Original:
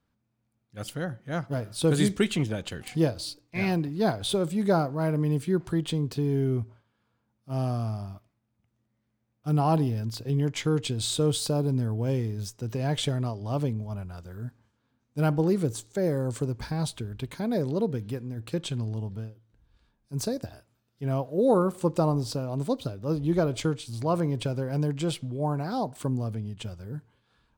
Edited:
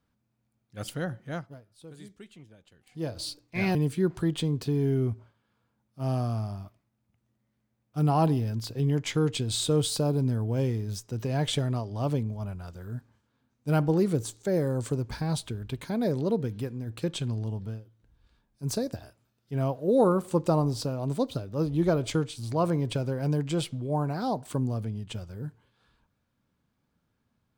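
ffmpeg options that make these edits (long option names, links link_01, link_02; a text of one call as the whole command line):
ffmpeg -i in.wav -filter_complex "[0:a]asplit=4[link_01][link_02][link_03][link_04];[link_01]atrim=end=1.67,asetpts=PTS-STARTPTS,afade=type=out:start_time=1.26:duration=0.41:curve=qua:silence=0.0630957[link_05];[link_02]atrim=start=1.67:end=2.81,asetpts=PTS-STARTPTS,volume=-24dB[link_06];[link_03]atrim=start=2.81:end=3.752,asetpts=PTS-STARTPTS,afade=type=in:duration=0.41:curve=qua:silence=0.0630957[link_07];[link_04]atrim=start=5.248[link_08];[link_05][link_06][link_07]concat=n=3:v=0:a=1[link_09];[link_09][link_08]acrossfade=duration=0.004:curve1=hsin:curve2=hsin" out.wav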